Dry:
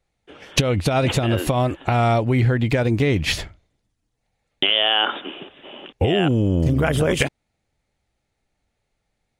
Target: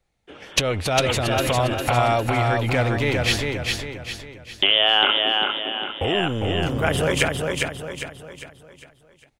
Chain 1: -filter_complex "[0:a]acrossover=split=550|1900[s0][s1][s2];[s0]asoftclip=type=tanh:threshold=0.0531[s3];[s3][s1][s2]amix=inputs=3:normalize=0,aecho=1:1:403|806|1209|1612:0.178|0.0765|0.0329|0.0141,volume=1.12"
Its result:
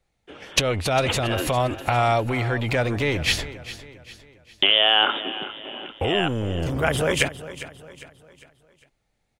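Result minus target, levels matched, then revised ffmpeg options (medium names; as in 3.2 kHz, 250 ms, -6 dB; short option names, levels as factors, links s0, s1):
echo-to-direct -11.5 dB
-filter_complex "[0:a]acrossover=split=550|1900[s0][s1][s2];[s0]asoftclip=type=tanh:threshold=0.0531[s3];[s3][s1][s2]amix=inputs=3:normalize=0,aecho=1:1:403|806|1209|1612|2015:0.668|0.287|0.124|0.0531|0.0228,volume=1.12"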